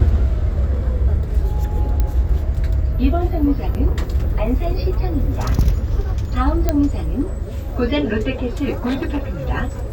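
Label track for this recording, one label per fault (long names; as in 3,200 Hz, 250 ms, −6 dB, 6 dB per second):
2.000000	2.000000	click −8 dBFS
3.740000	3.750000	drop-out 8.5 ms
6.690000	6.690000	click −4 dBFS
8.720000	9.400000	clipping −16.5 dBFS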